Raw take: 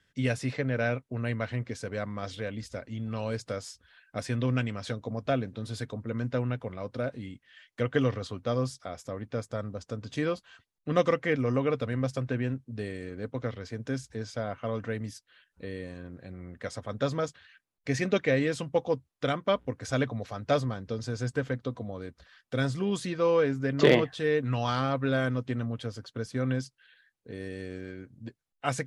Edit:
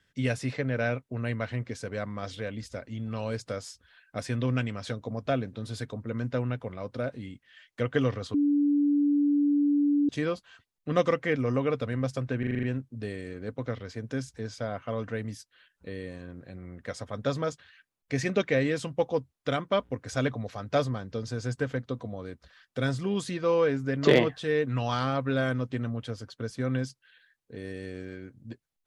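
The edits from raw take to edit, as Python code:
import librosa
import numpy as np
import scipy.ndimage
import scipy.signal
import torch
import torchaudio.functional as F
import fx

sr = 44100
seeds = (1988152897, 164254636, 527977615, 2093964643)

y = fx.edit(x, sr, fx.bleep(start_s=8.34, length_s=1.75, hz=289.0, db=-20.5),
    fx.stutter(start_s=12.39, slice_s=0.04, count=7), tone=tone)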